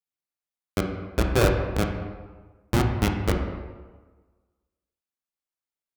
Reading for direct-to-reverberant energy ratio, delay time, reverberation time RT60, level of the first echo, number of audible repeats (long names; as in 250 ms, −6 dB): 1.5 dB, no echo audible, 1.4 s, no echo audible, no echo audible